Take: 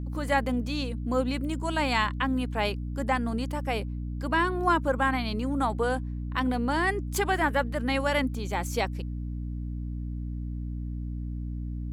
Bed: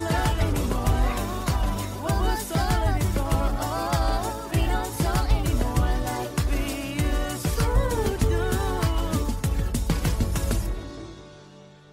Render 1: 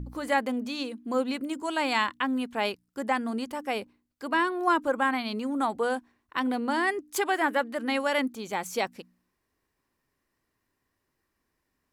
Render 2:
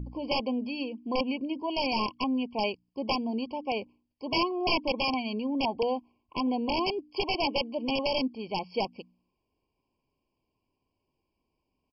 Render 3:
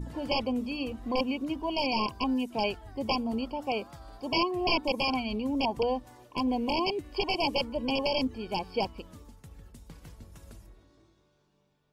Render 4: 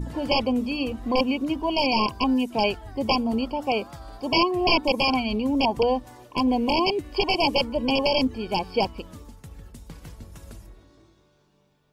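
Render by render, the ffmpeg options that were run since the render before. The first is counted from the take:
-af "bandreject=f=60:t=h:w=4,bandreject=f=120:t=h:w=4,bandreject=f=180:t=h:w=4,bandreject=f=240:t=h:w=4,bandreject=f=300:t=h:w=4"
-af "aresample=11025,aeval=exprs='(mod(8.41*val(0)+1,2)-1)/8.41':c=same,aresample=44100,afftfilt=real='re*eq(mod(floor(b*sr/1024/1100),2),0)':imag='im*eq(mod(floor(b*sr/1024/1100),2),0)':win_size=1024:overlap=0.75"
-filter_complex "[1:a]volume=-24.5dB[a];[0:a][a]amix=inputs=2:normalize=0"
-af "volume=6.5dB"

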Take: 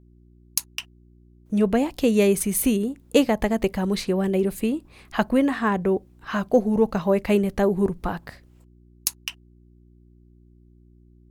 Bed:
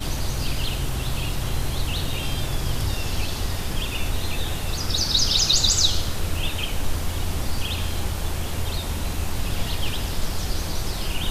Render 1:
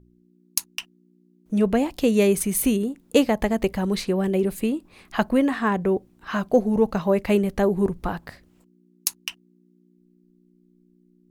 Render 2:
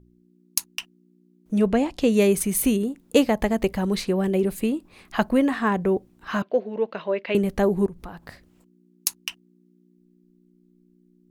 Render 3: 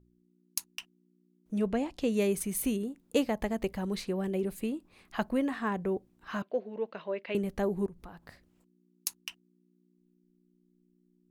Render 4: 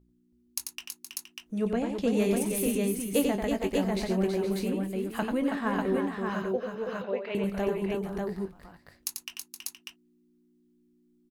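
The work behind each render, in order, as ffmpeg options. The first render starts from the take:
-af "bandreject=f=60:t=h:w=4,bandreject=f=120:t=h:w=4"
-filter_complex "[0:a]asettb=1/sr,asplit=3[a][b][c];[a]atrim=end=1.684[d];[b]atrim=start=1.68:end=2.11,asetpts=PTS-STARTPTS,afade=t=in:d=0.004:c=qsin,afade=t=out:st=0.426:d=0.004:c=qsin,lowpass=8.3k[e];[c]atrim=start=2.106[f];[d][e]acrossfade=d=0.004:c1=hsin:c2=qsin[g];[g][f]acrossfade=d=0.004:c1=qsin:c2=hsin,asettb=1/sr,asplit=3[h][i][j];[h]atrim=end=6.424[k];[i]atrim=start=6.42:end=7.35,asetpts=PTS-STARTPTS,afade=t=in:d=0.004:c=qsin,afade=t=out:st=0.926:d=0.004:c=qsin,highpass=450,equalizer=f=800:t=q:w=4:g=-10,equalizer=f=1.2k:t=q:w=4:g=-6,equalizer=f=2.8k:t=q:w=4:g=3,lowpass=f=3.8k:w=0.5412,lowpass=f=3.8k:w=1.3066[l];[j]atrim=start=7.346[m];[k][l]acrossfade=d=0.004:c1=hsin:c2=qsin[n];[n][m]acrossfade=d=0.004:c1=qsin:c2=hsin,asplit=3[o][p][q];[o]afade=t=out:st=7.85:d=0.02[r];[p]acompressor=threshold=-39dB:ratio=2.5:attack=3.2:release=140:knee=1:detection=peak,afade=t=in:st=7.85:d=0.02,afade=t=out:st=8.28:d=0.02[s];[q]afade=t=in:st=8.28:d=0.02[t];[r][s][t]amix=inputs=3:normalize=0"
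-af "volume=-9.5dB"
-filter_complex "[0:a]asplit=2[a][b];[b]adelay=21,volume=-10.5dB[c];[a][c]amix=inputs=2:normalize=0,aecho=1:1:91|325|470|594:0.531|0.473|0.266|0.708"

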